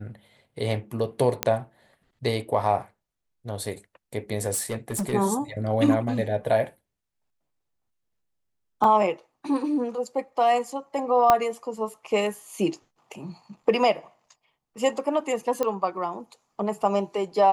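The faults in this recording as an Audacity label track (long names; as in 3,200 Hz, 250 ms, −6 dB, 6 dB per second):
1.430000	1.430000	click −5 dBFS
4.530000	5.140000	clipping −24 dBFS
8.840000	8.840000	drop-out 2.4 ms
11.300000	11.300000	click −5 dBFS
15.630000	15.630000	click −13 dBFS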